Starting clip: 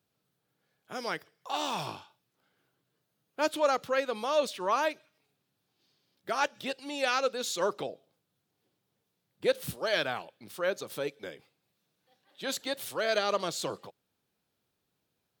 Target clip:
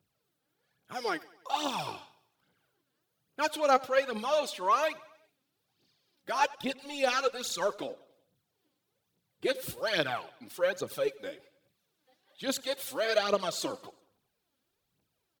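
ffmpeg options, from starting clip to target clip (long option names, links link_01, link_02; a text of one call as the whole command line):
ffmpeg -i in.wav -filter_complex "[0:a]asettb=1/sr,asplit=3[link_01][link_02][link_03];[link_01]atrim=end=6.484[link_04];[link_02]atrim=start=6.48:end=7.85,asetpts=PTS-STARTPTS,afade=type=in:duration=0.004:curve=qsin,afade=type=out:start_time=1.366:duration=0.004:curve=qsin,aeval=exprs='sgn(val(0))*max(abs(val(0))-0.00158,0)':channel_layout=same[link_05];[link_03]atrim=start=7.846[link_06];[link_04][link_05]acrossfade=duration=0.004:curve1=hsin:curve2=qsin[link_07];[link_07][link_06]acrossfade=duration=0.004:curve1=qsin:curve2=hsin,aphaser=in_gain=1:out_gain=1:delay=4:decay=0.64:speed=1.2:type=triangular,aecho=1:1:94|188|282|376:0.0794|0.0429|0.0232|0.0125,volume=-2dB" out.wav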